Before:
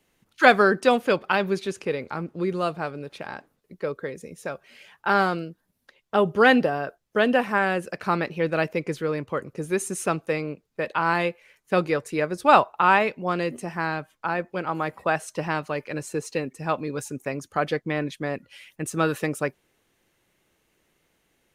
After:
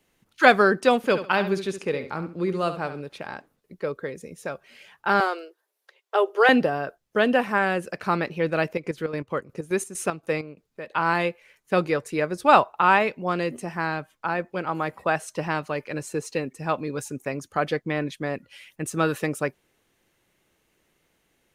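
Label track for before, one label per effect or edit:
0.970000	3.010000	feedback delay 69 ms, feedback 24%, level -11 dB
5.200000	6.490000	elliptic high-pass 380 Hz, stop band 50 dB
8.740000	10.910000	square tremolo 7.7 Hz -> 2.2 Hz, depth 65%, duty 55%

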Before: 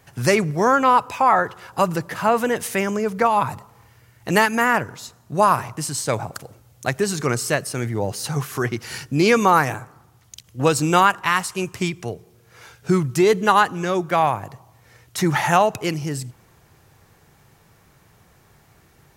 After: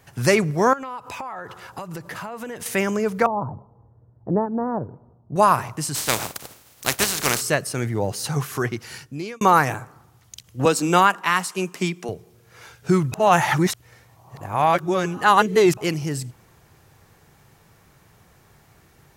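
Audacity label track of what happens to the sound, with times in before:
0.730000	2.660000	compression 12:1, threshold -29 dBFS
3.260000	5.360000	Bessel low-pass 580 Hz, order 6
5.940000	7.400000	spectral contrast reduction exponent 0.33
8.520000	9.410000	fade out
10.650000	12.090000	elliptic high-pass 170 Hz
13.120000	15.770000	reverse

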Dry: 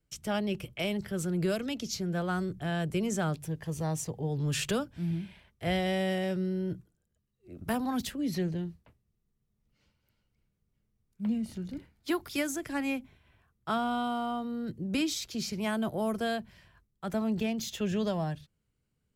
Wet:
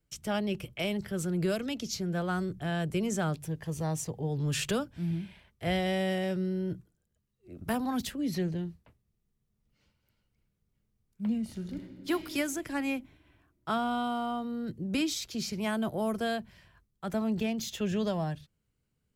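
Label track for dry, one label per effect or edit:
11.510000	12.110000	reverb throw, RT60 2.3 s, DRR 5 dB

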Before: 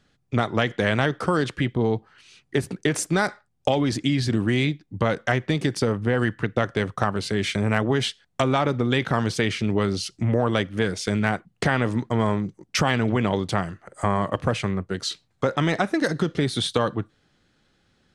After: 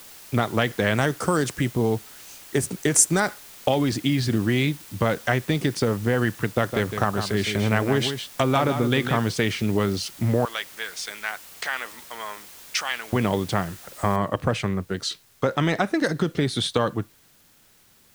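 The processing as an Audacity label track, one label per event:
0.970000	3.200000	resonant high shelf 5.2 kHz +10.5 dB, Q 1.5
6.530000	9.210000	delay 159 ms -8 dB
10.450000	13.130000	Bessel high-pass 1.5 kHz
14.160000	14.160000	noise floor step -45 dB -58 dB

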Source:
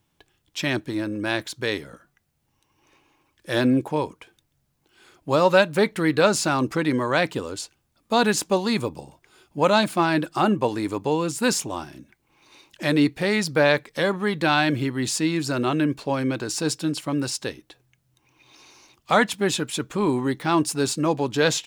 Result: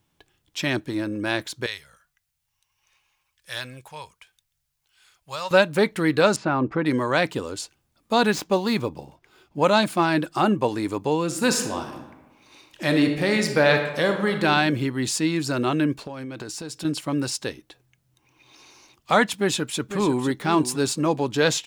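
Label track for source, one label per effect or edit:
1.660000	5.510000	amplifier tone stack bass-middle-treble 10-0-10
6.360000	6.860000	low-pass 1.8 kHz
8.310000	9.610000	median filter over 5 samples
11.250000	14.440000	reverb throw, RT60 1.1 s, DRR 5 dB
16.000000	16.850000	compression 12:1, threshold -30 dBFS
19.380000	20.260000	echo throw 500 ms, feedback 15%, level -10.5 dB

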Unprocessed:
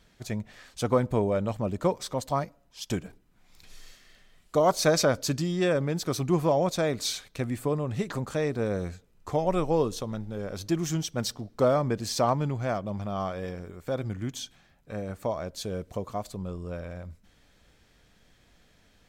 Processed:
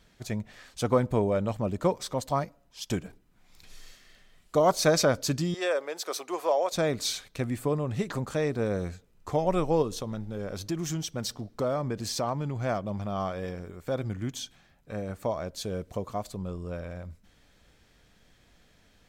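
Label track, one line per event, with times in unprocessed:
5.540000	6.720000	high-pass 450 Hz 24 dB/octave
9.820000	12.560000	compression 2:1, threshold -29 dBFS

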